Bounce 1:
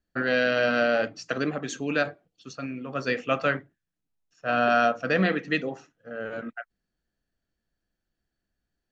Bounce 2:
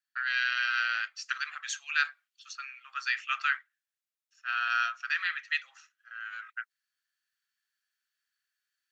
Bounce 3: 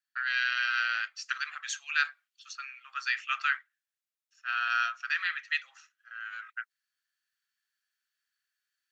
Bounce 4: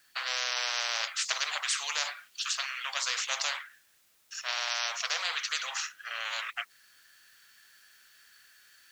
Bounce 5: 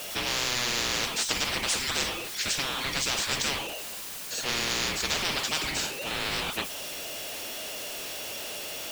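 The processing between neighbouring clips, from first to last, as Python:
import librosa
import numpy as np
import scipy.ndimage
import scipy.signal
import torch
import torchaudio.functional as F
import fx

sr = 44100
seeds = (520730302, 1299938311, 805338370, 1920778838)

y1 = scipy.signal.sosfilt(scipy.signal.butter(6, 1300.0, 'highpass', fs=sr, output='sos'), x)
y1 = fx.rider(y1, sr, range_db=4, speed_s=2.0)
y2 = y1
y3 = fx.spectral_comp(y2, sr, ratio=10.0)
y4 = y3 + 0.5 * 10.0 ** (-30.5 / 20.0) * np.sign(y3)
y4 = y4 * np.sin(2.0 * np.pi * 1100.0 * np.arange(len(y4)) / sr)
y4 = y4 * librosa.db_to_amplitude(3.0)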